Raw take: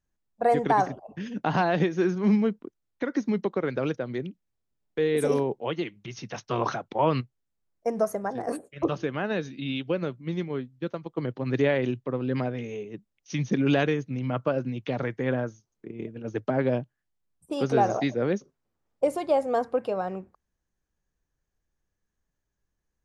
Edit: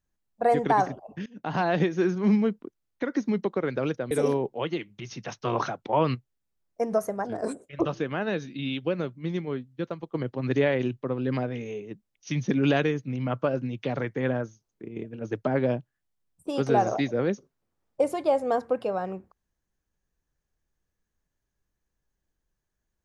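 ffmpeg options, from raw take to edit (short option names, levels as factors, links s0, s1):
-filter_complex "[0:a]asplit=5[s0][s1][s2][s3][s4];[s0]atrim=end=1.26,asetpts=PTS-STARTPTS,afade=t=out:st=1.256:d=0.004:c=hsin:silence=0.0707946[s5];[s1]atrim=start=1.26:end=4.112,asetpts=PTS-STARTPTS,afade=t=in:d=0.45:silence=0.0707946[s6];[s2]atrim=start=5.168:end=8.324[s7];[s3]atrim=start=8.32:end=8.66,asetpts=PTS-STARTPTS,asetrate=40572,aresample=44100[s8];[s4]atrim=start=8.656[s9];[s5][s6]concat=n=2:v=0:a=1[s10];[s10][s7]acrossfade=d=0.004:c1=hsin:c2=hsin[s11];[s11][s8]acrossfade=d=0.004:c1=hsin:c2=hsin[s12];[s12][s9]acrossfade=d=0.004:c1=hsin:c2=hsin"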